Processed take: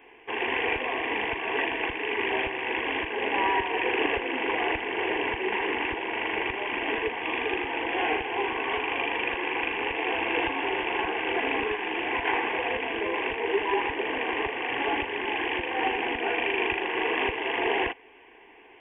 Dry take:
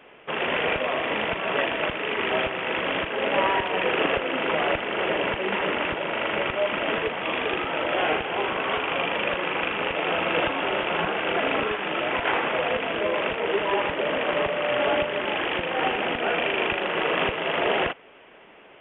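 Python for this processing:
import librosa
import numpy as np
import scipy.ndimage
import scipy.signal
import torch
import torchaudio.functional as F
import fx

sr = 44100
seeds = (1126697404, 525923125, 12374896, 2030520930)

y = fx.fixed_phaser(x, sr, hz=880.0, stages=8)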